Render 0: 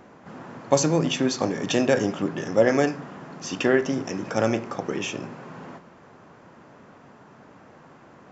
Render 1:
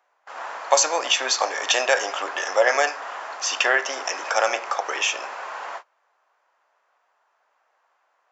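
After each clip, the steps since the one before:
high-pass filter 680 Hz 24 dB per octave
noise gate −47 dBFS, range −26 dB
in parallel at 0 dB: downward compressor, threshold −36 dBFS, peak gain reduction 16 dB
on the sum: level +6 dB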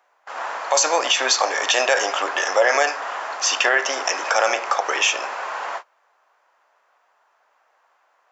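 brickwall limiter −11.5 dBFS, peak gain reduction 10 dB
level +5 dB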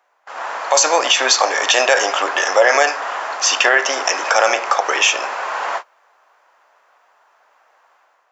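automatic gain control gain up to 7 dB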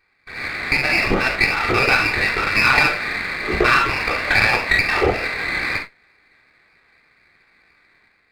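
convolution reverb, pre-delay 3 ms, DRR −1 dB
voice inversion scrambler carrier 3,100 Hz
windowed peak hold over 5 samples
level −3.5 dB

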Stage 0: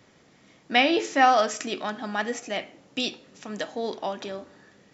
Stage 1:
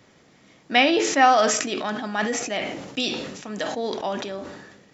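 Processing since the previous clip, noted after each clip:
level that may fall only so fast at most 46 dB per second
level +2 dB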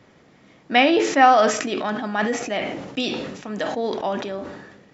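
high-shelf EQ 4,300 Hz −11.5 dB
level +3 dB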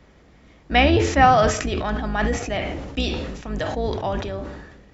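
sub-octave generator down 2 octaves, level +3 dB
level −1 dB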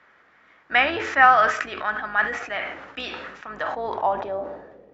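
band-pass filter sweep 1,500 Hz → 500 Hz, 0:03.37–0:04.89
level +8 dB

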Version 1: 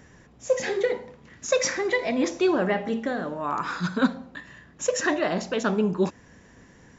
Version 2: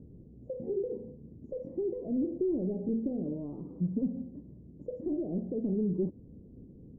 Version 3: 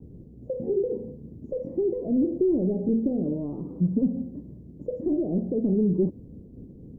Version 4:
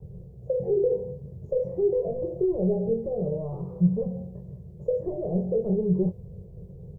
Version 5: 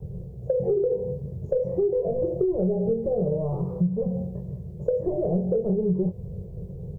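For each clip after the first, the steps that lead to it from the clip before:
soft clipping −20.5 dBFS, distortion −12 dB; downward compressor, threshold −29 dBFS, peak gain reduction 6.5 dB; inverse Chebyshev low-pass filter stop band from 1,400 Hz, stop band 60 dB; level +3 dB
downward expander −49 dBFS; level +7.5 dB
Chebyshev band-stop filter 160–450 Hz, order 2; double-tracking delay 22 ms −7 dB; level +4.5 dB
downward compressor 6 to 1, threshold −27 dBFS, peak gain reduction 11 dB; level +6.5 dB

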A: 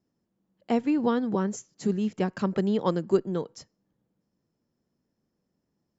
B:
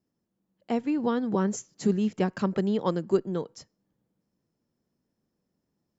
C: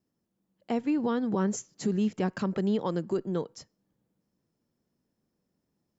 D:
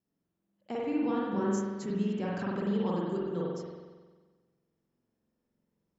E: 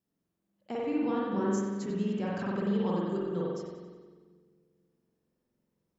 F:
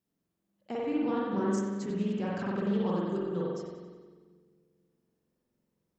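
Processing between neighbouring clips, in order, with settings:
speech leveller 0.5 s
brickwall limiter −19.5 dBFS, peak gain reduction 8 dB
spring reverb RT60 1.4 s, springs 45 ms, chirp 60 ms, DRR −5.5 dB; level −8 dB
echo with a time of its own for lows and highs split 410 Hz, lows 239 ms, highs 91 ms, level −13.5 dB
highs frequency-modulated by the lows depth 0.14 ms

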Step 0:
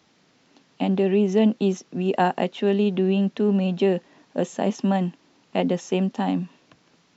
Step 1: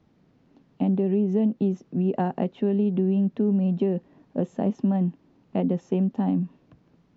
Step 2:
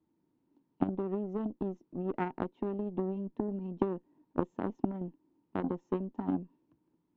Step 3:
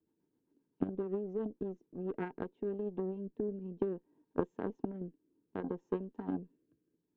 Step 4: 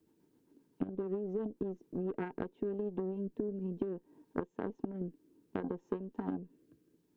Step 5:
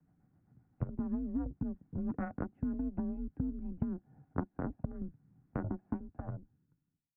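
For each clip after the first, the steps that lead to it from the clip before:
spectral tilt −4.5 dB per octave; downward compressor, threshold −12 dBFS, peak gain reduction 7.5 dB; level −7 dB
hollow resonant body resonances 320/920 Hz, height 15 dB, ringing for 40 ms; harmonic generator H 3 −10 dB, 5 −31 dB, 8 −38 dB, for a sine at −5 dBFS; level −7 dB
rotating-speaker cabinet horn 7.5 Hz, later 0.6 Hz, at 0:01.98; hollow resonant body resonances 440/1,600 Hz, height 10 dB; level −4 dB
downward compressor 6 to 1, threshold −43 dBFS, peak gain reduction 17 dB; level +9.5 dB
fade-out on the ending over 1.47 s; single-sideband voice off tune −160 Hz 220–2,100 Hz; level +2 dB

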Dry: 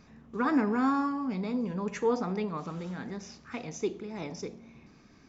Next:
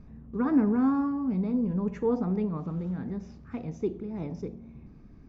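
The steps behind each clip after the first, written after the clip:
spectral tilt −4.5 dB per octave
level −5 dB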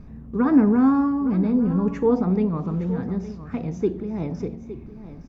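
single-tap delay 864 ms −14 dB
level +7 dB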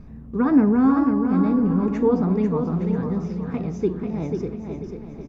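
repeating echo 492 ms, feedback 36%, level −6 dB

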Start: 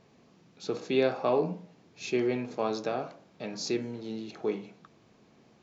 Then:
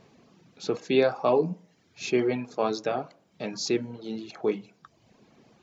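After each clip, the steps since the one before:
reverb reduction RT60 0.85 s
level +4.5 dB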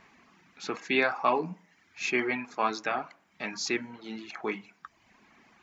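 octave-band graphic EQ 125/500/1,000/2,000/4,000 Hz −12/−11/+5/+10/−4 dB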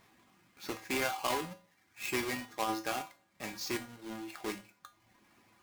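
each half-wave held at its own peak
tuned comb filter 110 Hz, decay 0.28 s, harmonics odd, mix 80%
compressor whose output falls as the input rises −31 dBFS, ratio −1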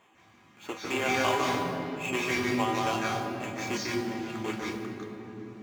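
convolution reverb RT60 3.6 s, pre-delay 150 ms, DRR −3 dB
level −5 dB

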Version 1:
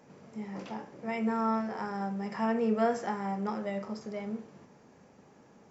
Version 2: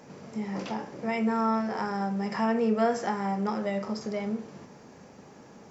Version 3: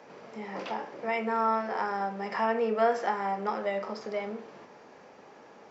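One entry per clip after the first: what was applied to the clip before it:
parametric band 5,000 Hz +3.5 dB 0.91 octaves; in parallel at +3 dB: downward compressor, threshold −37 dBFS, peak gain reduction 14 dB
three-way crossover with the lows and the highs turned down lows −16 dB, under 350 Hz, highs −16 dB, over 4,500 Hz; level +2 dB

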